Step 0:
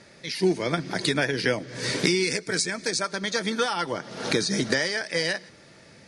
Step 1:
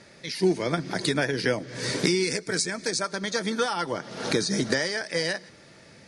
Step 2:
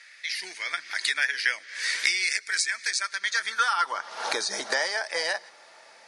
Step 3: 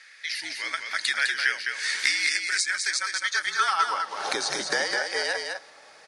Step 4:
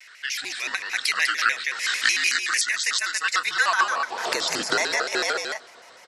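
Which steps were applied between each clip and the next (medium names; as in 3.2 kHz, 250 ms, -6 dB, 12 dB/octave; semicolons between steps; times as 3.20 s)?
dynamic bell 2.7 kHz, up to -4 dB, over -37 dBFS, Q 1.1
high-pass sweep 1.9 kHz -> 810 Hz, 3.21–4.36 s
delay 206 ms -5 dB; frequency shift -54 Hz
vibrato with a chosen wave square 6.7 Hz, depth 250 cents; trim +2.5 dB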